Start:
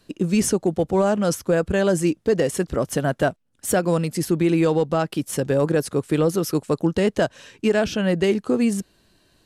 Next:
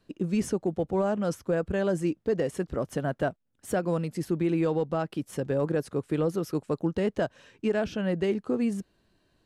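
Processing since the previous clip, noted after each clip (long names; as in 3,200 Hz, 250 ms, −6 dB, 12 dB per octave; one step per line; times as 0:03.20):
high-shelf EQ 3,500 Hz −10 dB
level −7 dB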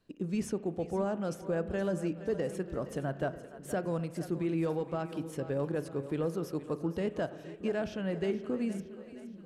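echo with a time of its own for lows and highs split 380 Hz, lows 630 ms, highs 469 ms, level −13.5 dB
spring reverb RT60 1.1 s, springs 36 ms, chirp 70 ms, DRR 13.5 dB
level −6 dB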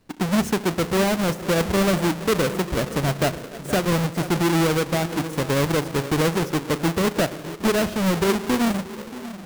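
each half-wave held at its own peak
level +8 dB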